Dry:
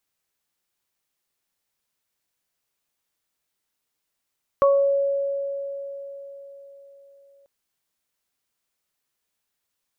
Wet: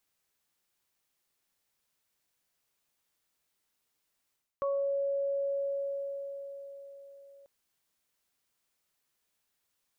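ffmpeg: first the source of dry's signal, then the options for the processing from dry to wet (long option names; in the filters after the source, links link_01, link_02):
-f lavfi -i "aevalsrc='0.211*pow(10,-3*t/4.27)*sin(2*PI*557*t)+0.158*pow(10,-3*t/0.39)*sin(2*PI*1114*t)':duration=2.84:sample_rate=44100"
-af "areverse,acompressor=threshold=-30dB:ratio=8,areverse"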